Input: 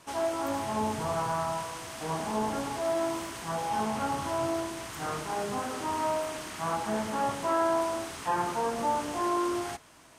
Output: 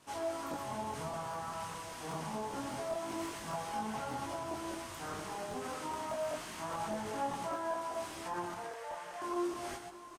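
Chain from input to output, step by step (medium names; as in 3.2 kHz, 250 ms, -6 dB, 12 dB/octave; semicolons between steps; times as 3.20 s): 8.54–9.22 s: rippled Chebyshev high-pass 460 Hz, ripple 9 dB; on a send: multi-tap echo 126/681 ms -6.5/-17.5 dB; on the sum: peak limiter -24.5 dBFS, peak gain reduction 7.5 dB; crackling interface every 0.20 s, samples 1024, repeat, from 0.49 s; detune thickener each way 10 cents; trim -2.5 dB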